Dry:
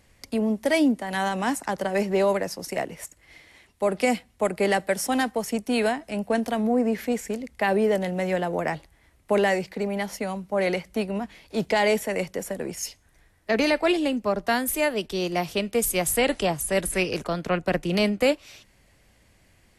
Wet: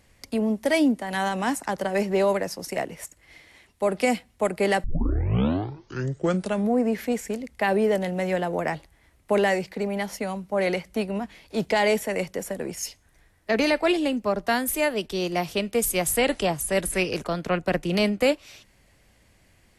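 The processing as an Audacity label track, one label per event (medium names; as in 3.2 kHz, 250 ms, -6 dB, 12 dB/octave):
4.840000	4.840000	tape start 1.89 s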